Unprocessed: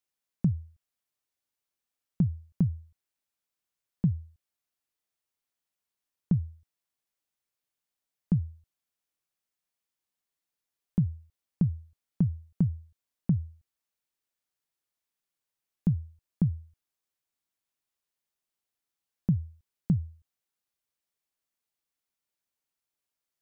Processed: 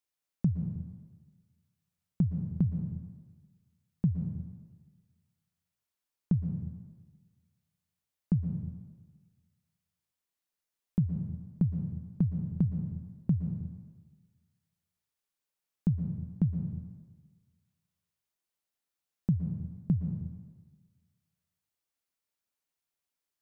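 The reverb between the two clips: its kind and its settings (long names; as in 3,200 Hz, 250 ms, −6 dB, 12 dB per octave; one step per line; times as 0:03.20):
dense smooth reverb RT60 1.4 s, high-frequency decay 0.85×, pre-delay 105 ms, DRR 6 dB
level −2 dB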